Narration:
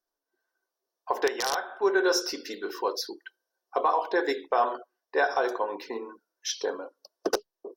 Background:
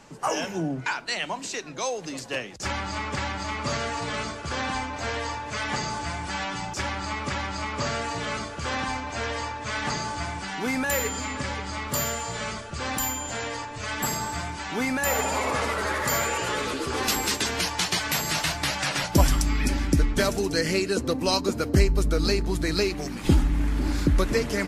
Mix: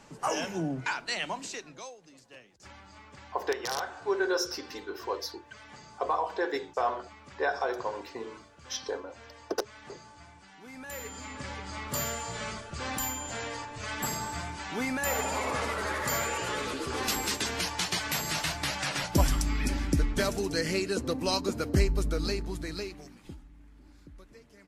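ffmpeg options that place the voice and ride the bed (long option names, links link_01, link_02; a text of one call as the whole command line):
ffmpeg -i stem1.wav -i stem2.wav -filter_complex "[0:a]adelay=2250,volume=-4.5dB[link_01];[1:a]volume=12.5dB,afade=type=out:start_time=1.31:duration=0.65:silence=0.133352,afade=type=in:start_time=10.68:duration=1.34:silence=0.158489,afade=type=out:start_time=21.9:duration=1.47:silence=0.0562341[link_02];[link_01][link_02]amix=inputs=2:normalize=0" out.wav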